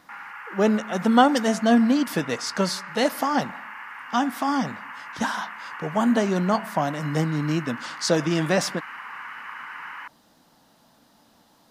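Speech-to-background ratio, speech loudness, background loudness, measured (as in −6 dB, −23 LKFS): 13.5 dB, −23.5 LKFS, −37.0 LKFS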